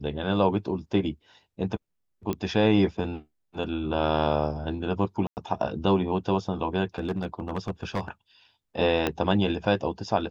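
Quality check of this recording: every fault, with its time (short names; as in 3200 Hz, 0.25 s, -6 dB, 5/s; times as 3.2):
2.33 pop -17 dBFS
5.27–5.37 gap 99 ms
6.98–8.08 clipped -23 dBFS
9.07 pop -11 dBFS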